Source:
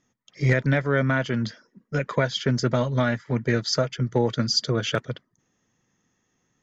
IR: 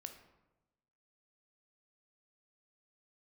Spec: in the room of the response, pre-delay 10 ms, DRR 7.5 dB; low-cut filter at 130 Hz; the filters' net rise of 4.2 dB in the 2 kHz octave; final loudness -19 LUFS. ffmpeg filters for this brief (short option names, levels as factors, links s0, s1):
-filter_complex "[0:a]highpass=130,equalizer=f=2000:t=o:g=5.5,asplit=2[s0][s1];[1:a]atrim=start_sample=2205,adelay=10[s2];[s1][s2]afir=irnorm=-1:irlink=0,volume=0.708[s3];[s0][s3]amix=inputs=2:normalize=0,volume=1.68"